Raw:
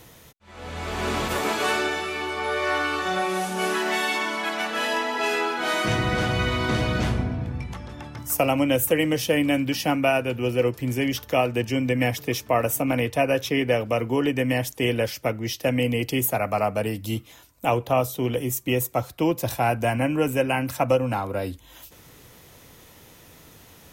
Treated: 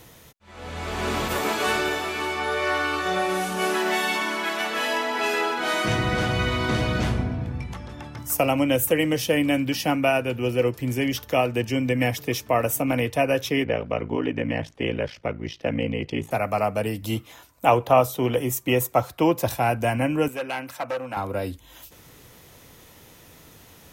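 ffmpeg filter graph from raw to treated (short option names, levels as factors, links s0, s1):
-filter_complex "[0:a]asettb=1/sr,asplit=3[s0][s1][s2];[s0]atrim=end=1.114[s3];[s1]atrim=start=1.11:end=5.6,asetpts=PTS-STARTPTS,afade=t=in:d=0.004:c=qsin,afade=t=out:st=4.486:d=0.004:c=qsin,equalizer=f=14000:w=3.3:g=5.5,aecho=1:1:558:0.316,atrim=end_sample=198009[s4];[s2]atrim=start=5.596[s5];[s3][s4]acrossfade=d=0.004:c1=hsin:c2=qsin[s6];[s6][s5]acrossfade=d=0.004:c1=qsin:c2=hsin,asettb=1/sr,asplit=3[s7][s8][s9];[s7]atrim=end=13.644[s10];[s8]atrim=start=13.64:end=16.31,asetpts=PTS-STARTPTS,afade=t=in:d=0.004:c=qsin,afade=t=out:st=2.666:d=0.004:c=qsin,lowpass=3300,aeval=exprs='val(0)*sin(2*PI*28*n/s)':c=same[s11];[s9]atrim=start=16.306[s12];[s10][s11]acrossfade=d=0.004:c1=hsin:c2=qsin[s13];[s13][s12]acrossfade=d=0.004:c1=qsin:c2=hsin,asettb=1/sr,asplit=3[s14][s15][s16];[s14]atrim=end=17.024[s17];[s15]atrim=start=17.02:end=19.48,asetpts=PTS-STARTPTS,afade=t=in:d=0.004:c=qsin,afade=t=out:st=2.456:d=0.004:c=qsin,highpass=42,equalizer=f=1000:w=0.59:g=6[s18];[s16]atrim=start=19.476[s19];[s17][s18]acrossfade=d=0.004:c1=hsin:c2=qsin[s20];[s20][s19]acrossfade=d=0.004:c1=qsin:c2=hsin,asettb=1/sr,asplit=3[s21][s22][s23];[s21]atrim=end=20.284[s24];[s22]atrim=start=20.28:end=21.17,asetpts=PTS-STARTPTS,afade=t=in:d=0.004:c=qsin,afade=t=out:st=0.886:d=0.004:c=qsin,asoftclip=type=hard:threshold=0.112,highpass=f=770:p=1,highshelf=f=3600:g=-8.5[s25];[s23]atrim=start=21.166[s26];[s24][s25]acrossfade=d=0.004:c1=hsin:c2=qsin[s27];[s27][s26]acrossfade=d=0.004:c1=qsin:c2=hsin"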